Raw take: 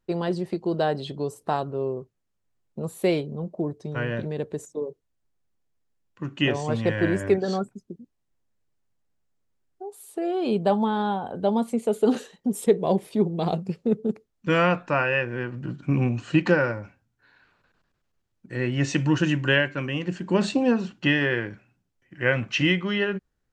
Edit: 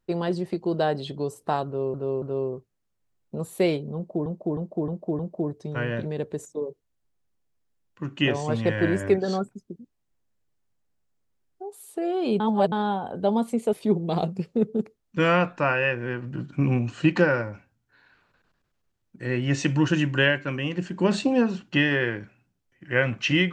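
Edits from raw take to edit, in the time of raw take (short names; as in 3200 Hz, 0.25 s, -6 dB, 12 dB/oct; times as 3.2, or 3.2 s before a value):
1.66–1.94 loop, 3 plays
3.39–3.7 loop, 5 plays
10.6–10.92 reverse
11.93–13.03 cut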